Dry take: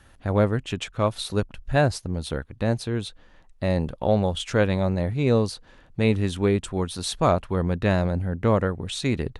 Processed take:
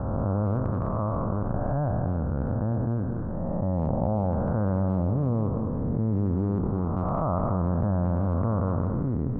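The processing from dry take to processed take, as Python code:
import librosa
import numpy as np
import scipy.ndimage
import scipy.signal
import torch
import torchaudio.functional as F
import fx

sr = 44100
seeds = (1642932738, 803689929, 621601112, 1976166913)

y = fx.spec_blur(x, sr, span_ms=431.0)
y = scipy.signal.sosfilt(scipy.signal.butter(8, 1300.0, 'lowpass', fs=sr, output='sos'), y)
y = fx.peak_eq(y, sr, hz=420.0, db=-9.0, octaves=0.81)
y = fx.transient(y, sr, attack_db=2, sustain_db=-7)
y = y + 10.0 ** (-12.5 / 20.0) * np.pad(y, (int(207 * sr / 1000.0), 0))[:len(y)]
y = fx.env_flatten(y, sr, amount_pct=70)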